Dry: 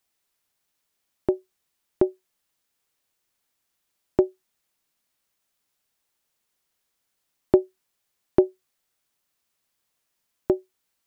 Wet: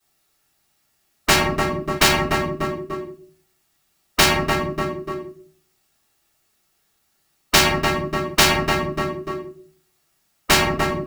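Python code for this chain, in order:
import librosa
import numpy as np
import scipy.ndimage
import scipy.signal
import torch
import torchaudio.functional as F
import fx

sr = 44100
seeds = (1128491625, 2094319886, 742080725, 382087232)

p1 = fx.leveller(x, sr, passes=5)
p2 = fx.notch_comb(p1, sr, f0_hz=510.0)
p3 = p2 + fx.echo_feedback(p2, sr, ms=295, feedback_pct=36, wet_db=-15.5, dry=0)
p4 = fx.room_shoebox(p3, sr, seeds[0], volume_m3=37.0, walls='mixed', distance_m=2.7)
p5 = fx.spectral_comp(p4, sr, ratio=10.0)
y = F.gain(torch.from_numpy(p5), -16.0).numpy()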